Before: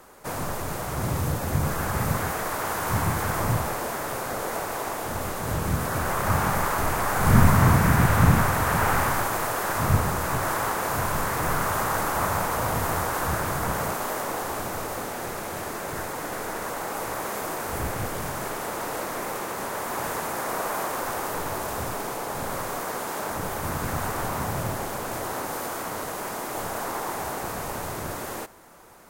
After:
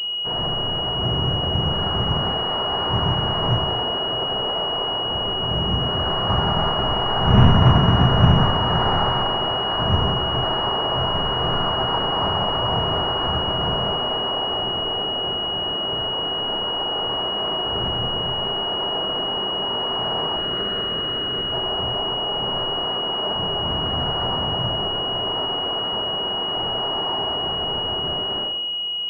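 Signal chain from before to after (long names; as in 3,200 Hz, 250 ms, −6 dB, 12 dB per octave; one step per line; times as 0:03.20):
0:20.36–0:21.52: lower of the sound and its delayed copy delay 0.59 ms
coupled-rooms reverb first 0.71 s, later 2.2 s, from −17 dB, DRR −2 dB
switching amplifier with a slow clock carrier 2,900 Hz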